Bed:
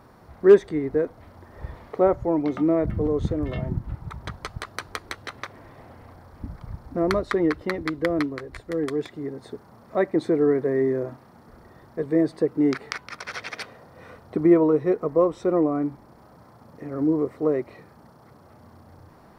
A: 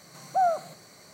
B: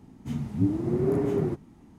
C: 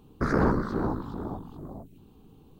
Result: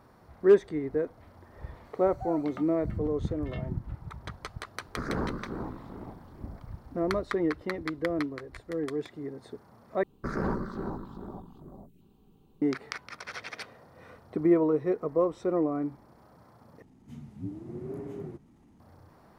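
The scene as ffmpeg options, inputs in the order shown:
-filter_complex "[3:a]asplit=2[a][b];[0:a]volume=-6dB[c];[1:a]equalizer=f=6.7k:w=0.74:g=-7[d];[b]aecho=1:1:5.2:0.32[e];[2:a]acompressor=mode=upward:threshold=-36dB:ratio=2.5:attack=0.16:release=37:knee=2.83:detection=peak[f];[c]asplit=3[g][h][i];[g]atrim=end=10.034[j];[e]atrim=end=2.59,asetpts=PTS-STARTPTS,volume=-7.5dB[k];[h]atrim=start=12.616:end=16.824[l];[f]atrim=end=1.98,asetpts=PTS-STARTPTS,volume=-13.5dB[m];[i]atrim=start=18.796[n];[d]atrim=end=1.13,asetpts=PTS-STARTPTS,volume=-16.5dB,afade=t=in:d=0.004:c=hsin,afade=t=out:st=1.126:d=0.004:c=hsin,adelay=1850[o];[a]atrim=end=2.59,asetpts=PTS-STARTPTS,volume=-8.5dB,afade=t=in:d=0.004:c=hsin,afade=t=out:st=2.586:d=0.004:c=hsin,adelay=4760[p];[j][k]acrossfade=d=0.004:c1=hsin:c2=hsin[q];[q][l]acrossfade=d=0.004:c1=hsin:c2=hsin[r];[r][m]acrossfade=d=0.004:c1=hsin:c2=hsin[s];[s][n]acrossfade=d=0.004:c1=hsin:c2=hsin[t];[t][o][p]amix=inputs=3:normalize=0"

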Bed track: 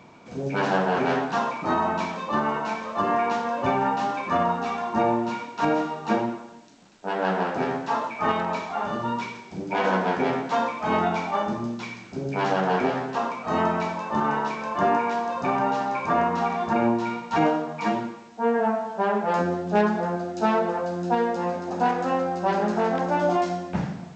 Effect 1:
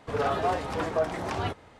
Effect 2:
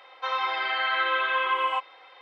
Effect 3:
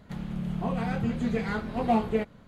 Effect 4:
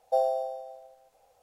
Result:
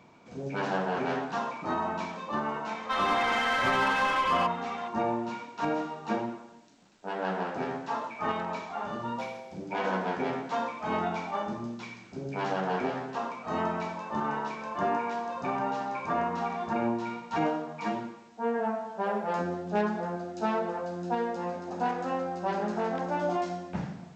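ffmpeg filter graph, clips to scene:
-filter_complex "[4:a]asplit=2[a][b];[0:a]volume=-7dB[c];[2:a]asplit=2[d][e];[e]highpass=f=720:p=1,volume=20dB,asoftclip=type=tanh:threshold=-13.5dB[f];[d][f]amix=inputs=2:normalize=0,lowpass=f=2.2k:p=1,volume=-6dB,atrim=end=2.21,asetpts=PTS-STARTPTS,volume=-6.5dB,afade=t=in:d=0.004:c=hsin,afade=t=out:st=2.206:d=0.004:c=hsin,adelay=2670[g];[a]atrim=end=1.42,asetpts=PTS-STARTPTS,volume=-15dB,afade=t=in:d=0.004:c=hsin,afade=t=out:st=1.416:d=0.004:c=hsin,adelay=399546S[h];[b]atrim=end=1.42,asetpts=PTS-STARTPTS,volume=-16dB,afade=t=in:d=0.004:c=hsin,afade=t=out:st=1.416:d=0.004:c=hsin,adelay=18930[i];[c][g][h][i]amix=inputs=4:normalize=0"

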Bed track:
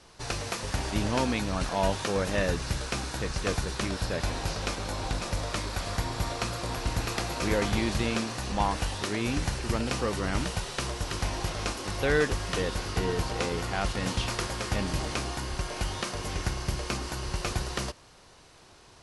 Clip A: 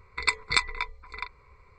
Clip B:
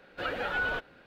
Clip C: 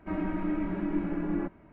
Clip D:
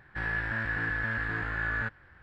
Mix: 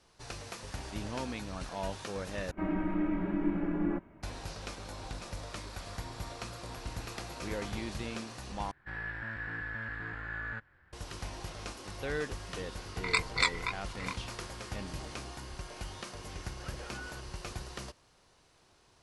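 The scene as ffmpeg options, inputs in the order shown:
-filter_complex "[0:a]volume=-10.5dB[a];[1:a]flanger=delay=18.5:depth=7.3:speed=2.1[b];[a]asplit=3[c][d][e];[c]atrim=end=2.514[f];[3:a]atrim=end=1.72,asetpts=PTS-STARTPTS,volume=-1dB[g];[d]atrim=start=4.226:end=8.714[h];[4:a]atrim=end=2.22,asetpts=PTS-STARTPTS,volume=-8dB[i];[e]atrim=start=10.926[j];[b]atrim=end=1.78,asetpts=PTS-STARTPTS,volume=-0.5dB,afade=t=in:d=0.004:c=hsin,afade=t=out:st=1.776:d=0.004:c=hsin,adelay=12860[k];[2:a]atrim=end=1.06,asetpts=PTS-STARTPTS,volume=-16dB,afade=t=in:d=0.004:c=hsin,afade=t=out:st=1.056:d=0.004:c=hsin,adelay=16410[l];[f][g]acrossfade=d=0.004:c1=hsin:c2=hsin[m];[m][h]acrossfade=d=0.004:c1=hsin:c2=hsin[n];[n][i]acrossfade=d=0.004:c1=hsin:c2=hsin[o];[o][j]acrossfade=d=0.004:c1=hsin:c2=hsin[p];[p][k][l]amix=inputs=3:normalize=0"

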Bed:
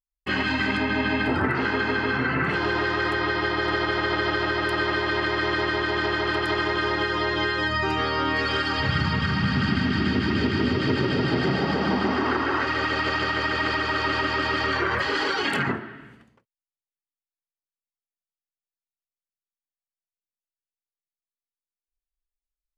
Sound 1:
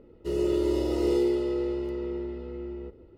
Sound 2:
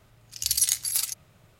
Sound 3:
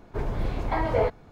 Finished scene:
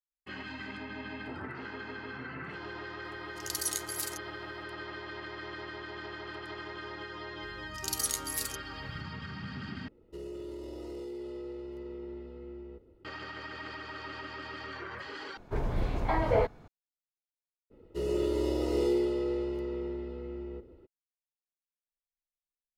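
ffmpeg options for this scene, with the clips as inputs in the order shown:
-filter_complex "[2:a]asplit=2[a][b];[1:a]asplit=2[c][d];[0:a]volume=-17.5dB[e];[b]aeval=exprs='val(0)+0.00794*(sin(2*PI*50*n/s)+sin(2*PI*2*50*n/s)/2+sin(2*PI*3*50*n/s)/3+sin(2*PI*4*50*n/s)/4+sin(2*PI*5*50*n/s)/5)':c=same[f];[c]alimiter=level_in=2.5dB:limit=-24dB:level=0:latency=1:release=57,volume=-2.5dB[g];[d]bandreject=f=50:t=h:w=6,bandreject=f=100:t=h:w=6,bandreject=f=150:t=h:w=6,bandreject=f=200:t=h:w=6,bandreject=f=250:t=h:w=6,bandreject=f=300:t=h:w=6,bandreject=f=350:t=h:w=6[h];[e]asplit=3[i][j][k];[i]atrim=end=9.884[l];[g]atrim=end=3.17,asetpts=PTS-STARTPTS,volume=-8dB[m];[j]atrim=start=13.046:end=15.374[n];[3:a]atrim=end=1.31,asetpts=PTS-STARTPTS,volume=-2.5dB[o];[k]atrim=start=16.676[p];[a]atrim=end=1.59,asetpts=PTS-STARTPTS,volume=-10.5dB,afade=t=in:d=0.004:c=hsin,afade=t=out:st=1.586:d=0.004:c=hsin,adelay=3040[q];[f]atrim=end=1.59,asetpts=PTS-STARTPTS,volume=-9dB,afade=t=in:d=0.004:c=hsin,afade=t=out:st=1.586:d=0.004:c=hsin,adelay=7420[r];[h]atrim=end=3.17,asetpts=PTS-STARTPTS,volume=-2dB,afade=t=in:d=0.02,afade=t=out:st=3.15:d=0.02,adelay=17700[s];[l][m]acrossfade=d=0.004:c1=hsin:c2=hsin[t];[t][n]acrossfade=d=0.004:c1=hsin:c2=hsin[u];[u][o]acrossfade=d=0.004:c1=hsin:c2=hsin[v];[v][p]acrossfade=d=0.004:c1=hsin:c2=hsin[w];[w][q][r][s]amix=inputs=4:normalize=0"

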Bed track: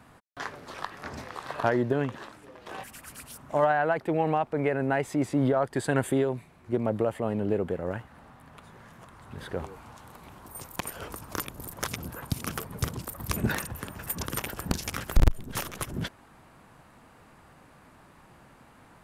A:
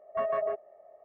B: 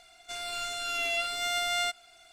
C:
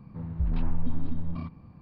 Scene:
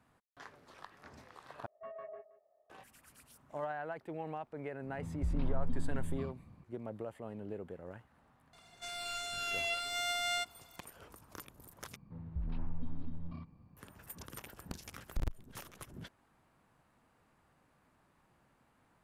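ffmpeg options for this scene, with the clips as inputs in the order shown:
-filter_complex "[3:a]asplit=2[a][b];[0:a]volume=-16dB[c];[1:a]aecho=1:1:174:0.168[d];[c]asplit=3[e][f][g];[e]atrim=end=1.664[h];[d]atrim=end=1.04,asetpts=PTS-STARTPTS,volume=-17.5dB[i];[f]atrim=start=2.696:end=11.964[j];[b]atrim=end=1.81,asetpts=PTS-STARTPTS,volume=-11dB[k];[g]atrim=start=13.766[l];[a]atrim=end=1.81,asetpts=PTS-STARTPTS,volume=-7dB,afade=t=in:d=0.004:c=hsin,afade=t=out:st=1.806:d=0.004:c=hsin,adelay=4830[m];[2:a]atrim=end=2.32,asetpts=PTS-STARTPTS,volume=-5.5dB,afade=t=in:d=0.004:c=hsin,afade=t=out:st=2.316:d=0.004:c=hsin,adelay=8530[n];[h][i]acrossfade=d=0.004:c1=hsin:c2=hsin[o];[o][j]acrossfade=d=0.004:c1=hsin:c2=hsin[p];[p][k]acrossfade=d=0.004:c1=hsin:c2=hsin[q];[q][l]acrossfade=d=0.004:c1=hsin:c2=hsin[r];[r][m][n]amix=inputs=3:normalize=0"

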